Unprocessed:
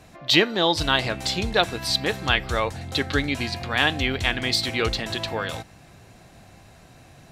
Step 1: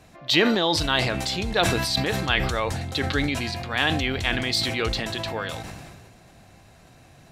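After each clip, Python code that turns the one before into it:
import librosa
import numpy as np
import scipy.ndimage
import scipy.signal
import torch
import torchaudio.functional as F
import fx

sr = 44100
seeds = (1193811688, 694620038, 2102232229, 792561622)

y = fx.sustainer(x, sr, db_per_s=30.0)
y = y * librosa.db_to_amplitude(-2.5)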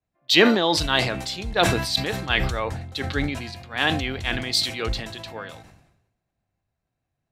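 y = fx.band_widen(x, sr, depth_pct=100)
y = y * librosa.db_to_amplitude(-1.0)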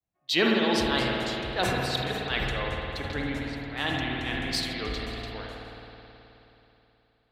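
y = fx.vibrato(x, sr, rate_hz=1.4, depth_cents=82.0)
y = fx.rev_spring(y, sr, rt60_s=3.4, pass_ms=(53,), chirp_ms=30, drr_db=-1.0)
y = y * librosa.db_to_amplitude(-8.5)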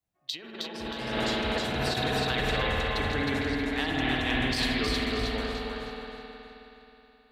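y = fx.over_compress(x, sr, threshold_db=-30.0, ratio=-0.5)
y = fx.echo_feedback(y, sr, ms=314, feedback_pct=37, wet_db=-3)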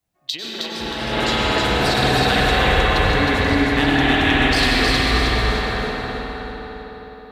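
y = fx.rev_plate(x, sr, seeds[0], rt60_s=4.0, hf_ratio=0.45, predelay_ms=85, drr_db=-1.5)
y = y * librosa.db_to_amplitude(8.5)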